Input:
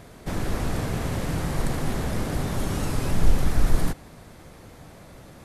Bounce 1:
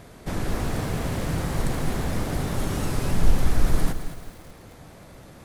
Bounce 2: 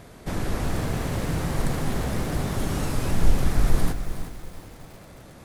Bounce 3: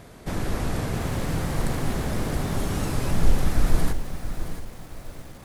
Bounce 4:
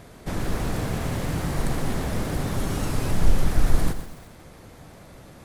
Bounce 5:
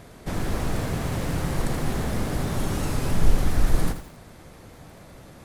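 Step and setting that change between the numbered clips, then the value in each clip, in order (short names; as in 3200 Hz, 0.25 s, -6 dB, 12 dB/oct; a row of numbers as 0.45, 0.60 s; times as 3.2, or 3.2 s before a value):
lo-fi delay, time: 217, 366, 673, 125, 82 ms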